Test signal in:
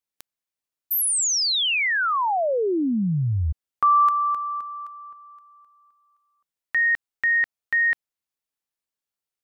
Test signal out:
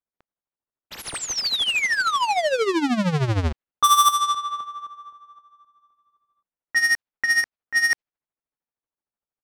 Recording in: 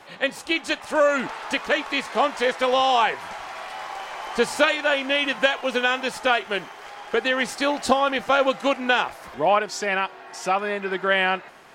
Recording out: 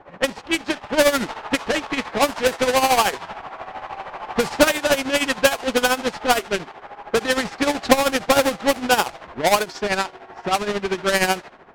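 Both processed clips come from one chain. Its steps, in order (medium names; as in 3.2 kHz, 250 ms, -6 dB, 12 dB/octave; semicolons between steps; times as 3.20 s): square wave that keeps the level; tremolo 13 Hz, depth 70%; level-controlled noise filter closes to 1.3 kHz, open at -15 dBFS; trim +1 dB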